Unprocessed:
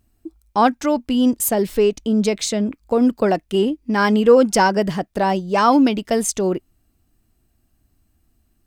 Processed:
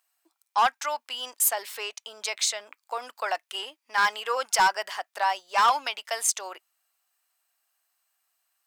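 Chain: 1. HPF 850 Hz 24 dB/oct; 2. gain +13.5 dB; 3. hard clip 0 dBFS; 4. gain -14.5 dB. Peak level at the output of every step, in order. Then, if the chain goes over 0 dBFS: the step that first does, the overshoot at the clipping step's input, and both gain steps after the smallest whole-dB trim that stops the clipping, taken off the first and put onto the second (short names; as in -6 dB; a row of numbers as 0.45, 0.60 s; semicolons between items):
-5.5, +8.0, 0.0, -14.5 dBFS; step 2, 8.0 dB; step 2 +5.5 dB, step 4 -6.5 dB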